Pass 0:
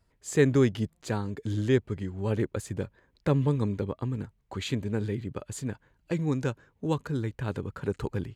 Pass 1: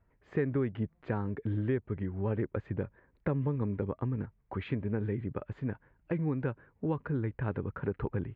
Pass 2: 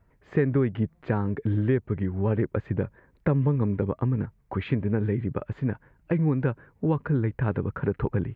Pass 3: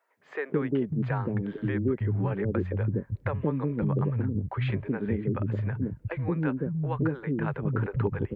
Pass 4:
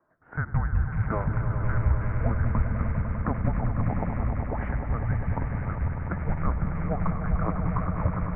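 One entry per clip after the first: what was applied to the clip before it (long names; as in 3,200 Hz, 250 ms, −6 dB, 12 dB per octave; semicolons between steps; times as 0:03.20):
low-pass filter 2,200 Hz 24 dB per octave; downward compressor 4 to 1, threshold −28 dBFS, peak gain reduction 10.5 dB
parametric band 150 Hz +2.5 dB; level +6.5 dB
three-band delay without the direct sound highs, mids, lows 170/550 ms, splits 160/490 Hz
loose part that buzzes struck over −28 dBFS, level −31 dBFS; single-sideband voice off tune −320 Hz 210–2,000 Hz; echo that builds up and dies away 100 ms, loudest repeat 5, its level −10.5 dB; level +4 dB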